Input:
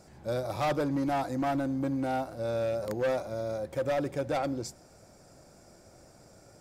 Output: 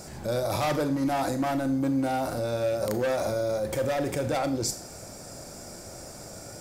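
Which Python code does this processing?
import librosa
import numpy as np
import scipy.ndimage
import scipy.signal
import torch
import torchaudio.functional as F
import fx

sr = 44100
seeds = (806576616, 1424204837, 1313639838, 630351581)

p1 = fx.high_shelf(x, sr, hz=4800.0, db=8.5)
p2 = fx.over_compress(p1, sr, threshold_db=-39.0, ratio=-1.0)
p3 = p1 + (p2 * 10.0 ** (1.0 / 20.0))
y = fx.rev_schroeder(p3, sr, rt60_s=0.38, comb_ms=26, drr_db=9.0)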